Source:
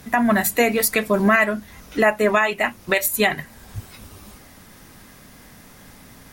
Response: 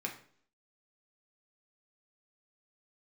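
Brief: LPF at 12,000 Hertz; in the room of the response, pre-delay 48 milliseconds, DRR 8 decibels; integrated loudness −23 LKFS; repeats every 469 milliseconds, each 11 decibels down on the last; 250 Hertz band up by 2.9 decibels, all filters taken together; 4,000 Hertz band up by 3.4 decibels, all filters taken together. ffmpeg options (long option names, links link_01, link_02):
-filter_complex "[0:a]lowpass=12000,equalizer=frequency=250:width_type=o:gain=3.5,equalizer=frequency=4000:width_type=o:gain=4.5,aecho=1:1:469|938|1407:0.282|0.0789|0.0221,asplit=2[link_01][link_02];[1:a]atrim=start_sample=2205,adelay=48[link_03];[link_02][link_03]afir=irnorm=-1:irlink=0,volume=-10dB[link_04];[link_01][link_04]amix=inputs=2:normalize=0,volume=-5.5dB"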